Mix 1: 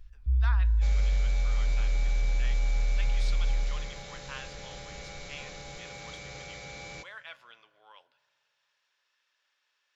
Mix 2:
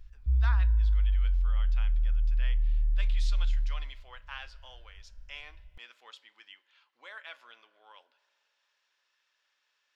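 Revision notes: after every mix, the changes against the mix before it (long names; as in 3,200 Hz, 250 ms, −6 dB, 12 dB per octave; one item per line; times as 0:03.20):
second sound: muted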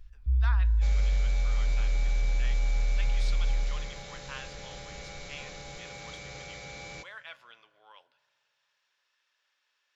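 second sound: unmuted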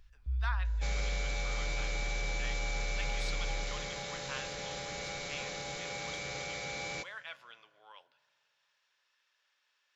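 second sound +4.5 dB
master: add low-shelf EQ 110 Hz −11.5 dB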